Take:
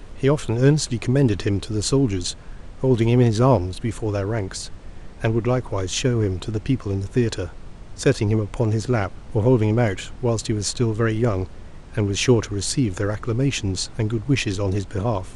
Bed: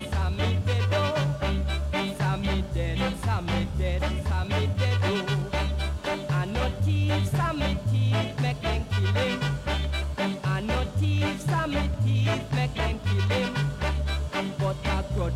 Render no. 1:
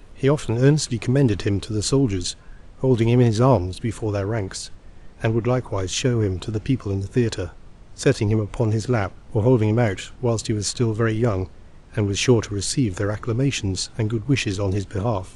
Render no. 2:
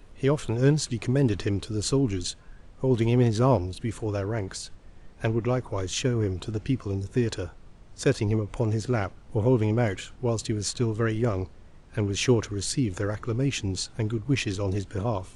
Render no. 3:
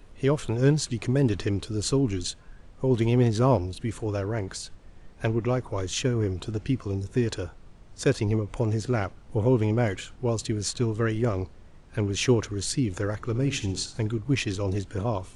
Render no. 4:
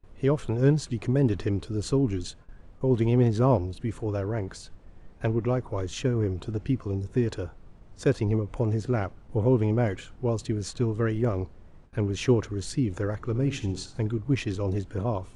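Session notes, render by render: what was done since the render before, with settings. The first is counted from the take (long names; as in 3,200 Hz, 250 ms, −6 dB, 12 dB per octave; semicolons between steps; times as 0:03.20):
noise reduction from a noise print 6 dB
level −5 dB
0:13.18–0:14.07: flutter between parallel walls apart 11.9 metres, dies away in 0.34 s
noise gate with hold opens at −40 dBFS; high-shelf EQ 2,100 Hz −9 dB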